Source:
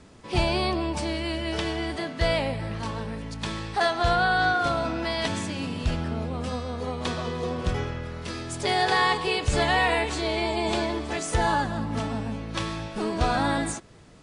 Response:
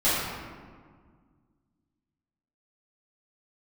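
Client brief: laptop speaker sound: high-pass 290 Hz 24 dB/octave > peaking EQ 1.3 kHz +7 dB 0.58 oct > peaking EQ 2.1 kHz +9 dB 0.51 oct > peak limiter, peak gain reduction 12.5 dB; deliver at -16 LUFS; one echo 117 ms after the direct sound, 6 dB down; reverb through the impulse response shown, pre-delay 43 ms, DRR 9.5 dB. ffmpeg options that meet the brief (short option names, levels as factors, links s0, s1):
-filter_complex "[0:a]aecho=1:1:117:0.501,asplit=2[s0][s1];[1:a]atrim=start_sample=2205,adelay=43[s2];[s1][s2]afir=irnorm=-1:irlink=0,volume=0.0562[s3];[s0][s3]amix=inputs=2:normalize=0,highpass=f=290:w=0.5412,highpass=f=290:w=1.3066,equalizer=f=1300:t=o:w=0.58:g=7,equalizer=f=2100:t=o:w=0.51:g=9,volume=3.35,alimiter=limit=0.501:level=0:latency=1"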